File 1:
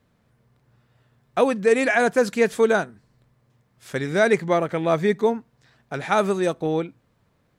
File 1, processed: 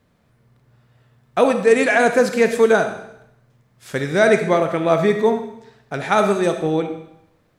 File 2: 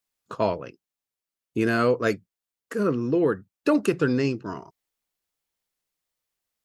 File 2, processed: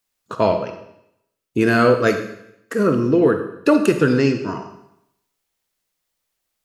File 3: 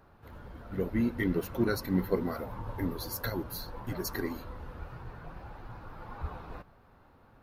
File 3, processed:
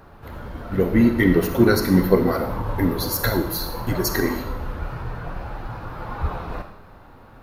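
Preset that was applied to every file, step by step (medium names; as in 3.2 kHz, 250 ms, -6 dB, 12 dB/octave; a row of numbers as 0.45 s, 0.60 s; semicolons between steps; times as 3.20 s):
algorithmic reverb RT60 0.78 s, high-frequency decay 1×, pre-delay 5 ms, DRR 6.5 dB; peak normalisation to -3 dBFS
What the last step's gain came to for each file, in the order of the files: +3.0 dB, +6.5 dB, +12.5 dB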